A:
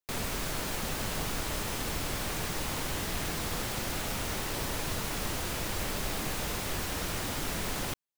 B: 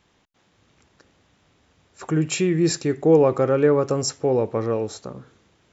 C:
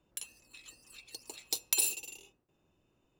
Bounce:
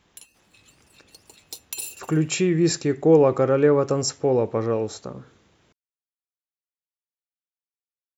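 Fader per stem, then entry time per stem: mute, 0.0 dB, -3.5 dB; mute, 0.00 s, 0.00 s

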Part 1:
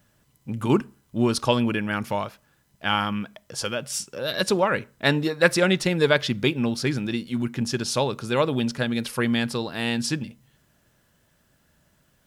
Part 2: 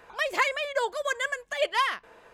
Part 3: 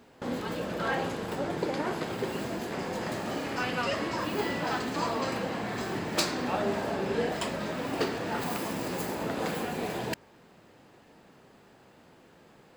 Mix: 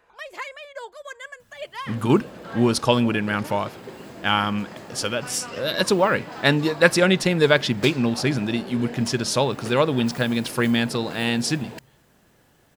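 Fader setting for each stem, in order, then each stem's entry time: +2.5 dB, -9.0 dB, -6.5 dB; 1.40 s, 0.00 s, 1.65 s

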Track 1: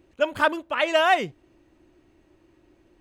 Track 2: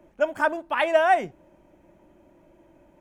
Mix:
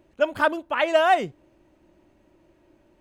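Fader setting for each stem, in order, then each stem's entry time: -2.5 dB, -7.0 dB; 0.00 s, 0.00 s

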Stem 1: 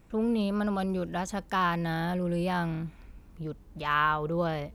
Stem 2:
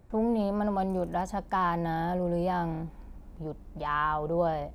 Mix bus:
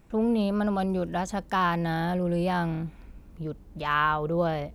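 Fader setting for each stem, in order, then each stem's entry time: 0.0 dB, -8.0 dB; 0.00 s, 0.00 s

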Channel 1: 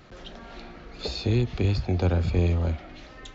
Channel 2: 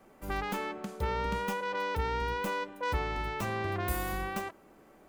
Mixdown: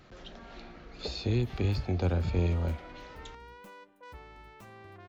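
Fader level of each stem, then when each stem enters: -5.0 dB, -17.0 dB; 0.00 s, 1.20 s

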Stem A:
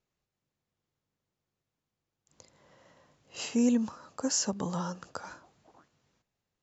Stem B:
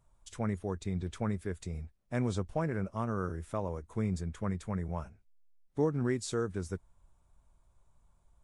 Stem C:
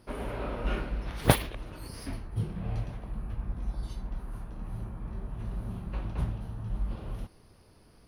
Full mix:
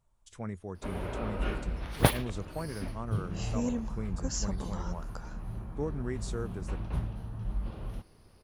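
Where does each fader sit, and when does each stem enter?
-7.0 dB, -5.0 dB, -1.5 dB; 0.00 s, 0.00 s, 0.75 s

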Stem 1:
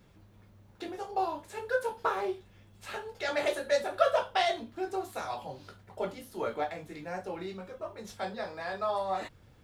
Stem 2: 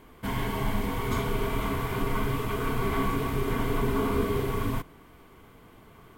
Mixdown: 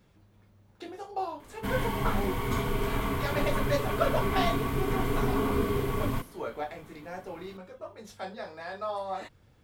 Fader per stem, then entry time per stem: -2.5 dB, -1.0 dB; 0.00 s, 1.40 s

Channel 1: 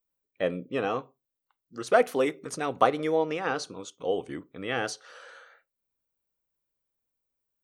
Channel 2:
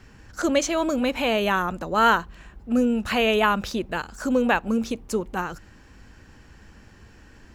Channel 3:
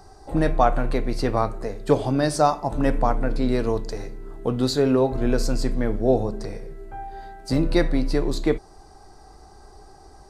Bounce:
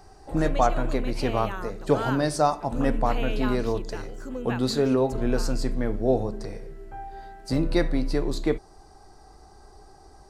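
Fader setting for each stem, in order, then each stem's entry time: -19.0 dB, -13.5 dB, -3.0 dB; 0.00 s, 0.00 s, 0.00 s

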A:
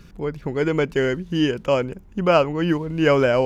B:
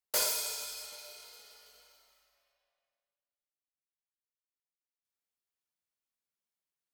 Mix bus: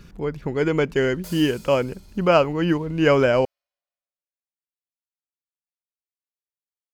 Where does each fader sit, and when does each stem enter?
0.0 dB, -11.5 dB; 0.00 s, 1.10 s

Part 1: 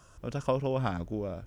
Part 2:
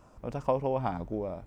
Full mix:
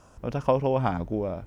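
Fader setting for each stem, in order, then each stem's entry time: -2.0 dB, +1.0 dB; 0.00 s, 0.00 s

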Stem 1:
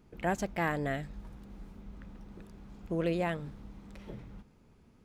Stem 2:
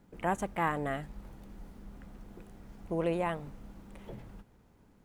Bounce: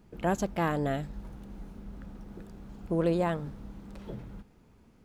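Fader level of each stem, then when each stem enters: +1.0 dB, -3.5 dB; 0.00 s, 0.00 s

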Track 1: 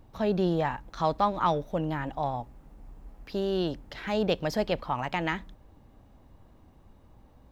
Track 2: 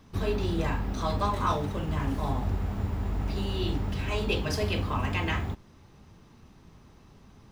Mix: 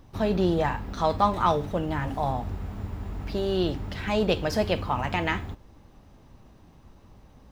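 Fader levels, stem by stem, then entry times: +2.0 dB, -4.0 dB; 0.00 s, 0.00 s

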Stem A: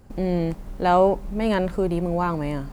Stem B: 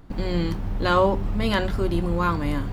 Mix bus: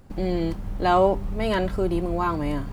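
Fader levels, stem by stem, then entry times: -2.0 dB, -7.0 dB; 0.00 s, 0.00 s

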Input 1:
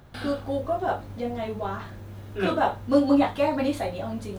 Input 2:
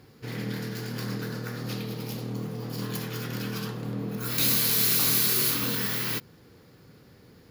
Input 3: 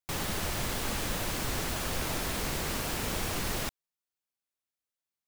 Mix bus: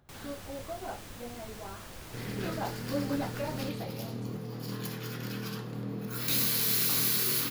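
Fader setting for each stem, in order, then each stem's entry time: -13.5 dB, -4.5 dB, -14.0 dB; 0.00 s, 1.90 s, 0.00 s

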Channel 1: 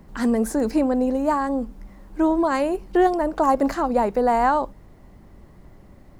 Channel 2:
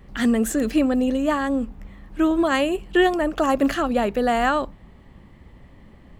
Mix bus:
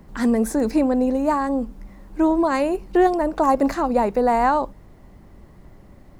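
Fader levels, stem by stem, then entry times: +1.0 dB, -19.0 dB; 0.00 s, 0.00 s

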